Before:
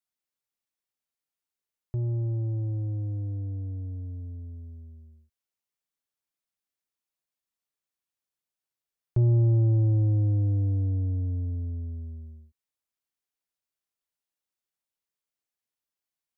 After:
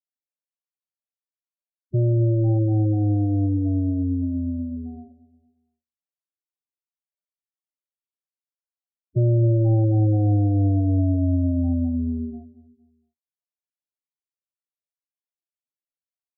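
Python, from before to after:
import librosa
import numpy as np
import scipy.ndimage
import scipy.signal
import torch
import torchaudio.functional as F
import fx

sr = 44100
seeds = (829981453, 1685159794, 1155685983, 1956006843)

y = scipy.signal.sosfilt(scipy.signal.butter(2, 320.0, 'highpass', fs=sr, output='sos'), x)
y = fx.low_shelf(y, sr, hz=430.0, db=9.0)
y = fx.leveller(y, sr, passes=5)
y = fx.notch_comb(y, sr, f0_hz=430.0)
y = fx.spec_topn(y, sr, count=8)
y = fx.echo_feedback(y, sr, ms=230, feedback_pct=41, wet_db=-19)
y = y * 10.0 ** (6.0 / 20.0)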